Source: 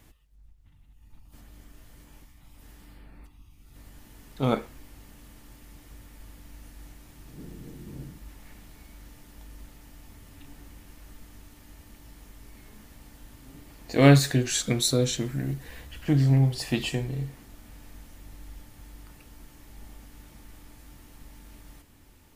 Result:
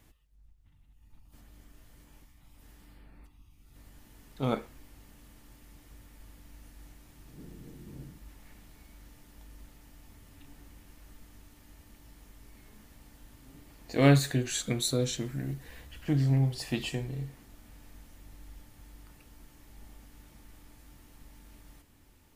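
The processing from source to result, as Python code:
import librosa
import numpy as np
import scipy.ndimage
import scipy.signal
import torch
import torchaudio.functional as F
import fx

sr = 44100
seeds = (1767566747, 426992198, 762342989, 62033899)

y = fx.peak_eq(x, sr, hz=5300.0, db=-7.5, octaves=0.22, at=(14.12, 15.0))
y = y * librosa.db_to_amplitude(-5.0)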